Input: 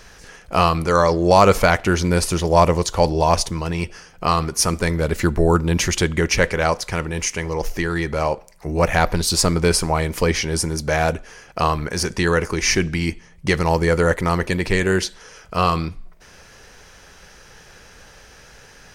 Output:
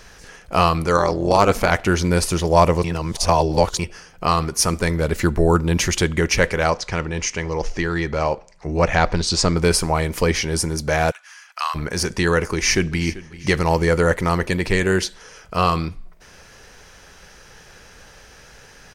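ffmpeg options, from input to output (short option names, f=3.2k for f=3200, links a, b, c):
-filter_complex "[0:a]asettb=1/sr,asplit=3[a][b][c];[a]atrim=end=0.974[d];[b]atrim=start=0.97:end=1.72,asetpts=PTS-STARTPTS,afade=t=in:d=0.004:c=qsin,afade=t=out:st=0.746:d=0.004:c=qsin,tremolo=f=210:d=0.71[e];[c]atrim=start=1.716[f];[d][e]acrossfade=d=0.004:c1=hsin:c2=qsin[g];[g][f]acrossfade=d=0.004:c1=qsin:c2=hsin,asettb=1/sr,asplit=3[h][i][j];[h]atrim=end=6.704[k];[i]atrim=start=6.7:end=9.57,asetpts=PTS-STARTPTS,afade=t=in:d=0.004:c=qsin,afade=t=out:st=2.866:d=0.004:c=qsin,lowpass=f=7.1k:w=0.5412,lowpass=f=7.1k:w=1.3066[l];[j]atrim=start=9.566[m];[k][l]acrossfade=d=0.004:c1=hsin:c2=qsin[n];[n][m]acrossfade=d=0.004:c1=qsin:c2=hsin,asplit=3[o][p][q];[o]afade=t=out:st=11.1:d=0.02[r];[p]highpass=f=1.1k:w=0.5412,highpass=f=1.1k:w=1.3066,afade=t=in:st=11.1:d=0.02,afade=t=out:st=11.74:d=0.02[s];[q]afade=t=in:st=11.74:d=0.02[t];[r][s][t]amix=inputs=3:normalize=0,asplit=2[u][v];[v]afade=t=in:st=12.52:d=0.01,afade=t=out:st=13.04:d=0.01,aecho=0:1:390|780|1170|1560:0.133352|0.0666761|0.033338|0.016669[w];[u][w]amix=inputs=2:normalize=0,asplit=3[x][y][z];[x]atrim=end=2.842[aa];[y]atrim=start=2.838:end=3.792,asetpts=PTS-STARTPTS,areverse[ab];[z]atrim=start=3.788[ac];[aa][ab]acrossfade=d=0.004:c1=hsin:c2=hsin[ad];[ad][ac]acrossfade=d=0.004:c1=hsin:c2=hsin"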